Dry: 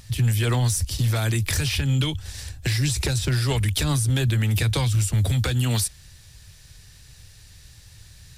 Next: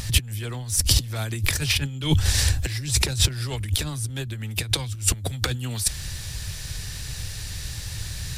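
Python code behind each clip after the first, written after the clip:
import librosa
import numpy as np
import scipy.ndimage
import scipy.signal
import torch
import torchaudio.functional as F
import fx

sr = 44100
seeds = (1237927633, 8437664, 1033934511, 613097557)

y = fx.over_compress(x, sr, threshold_db=-29.0, ratio=-0.5)
y = F.gain(torch.from_numpy(y), 6.5).numpy()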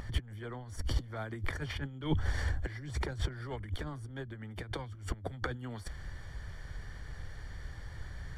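y = scipy.signal.savgol_filter(x, 41, 4, mode='constant')
y = fx.peak_eq(y, sr, hz=110.0, db=-9.0, octaves=1.4)
y = F.gain(torch.from_numpy(y), -5.5).numpy()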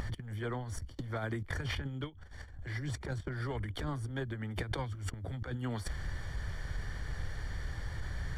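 y = fx.over_compress(x, sr, threshold_db=-39.0, ratio=-0.5)
y = F.gain(torch.from_numpy(y), 2.5).numpy()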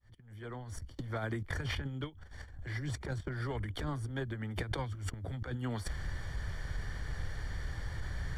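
y = fx.fade_in_head(x, sr, length_s=1.08)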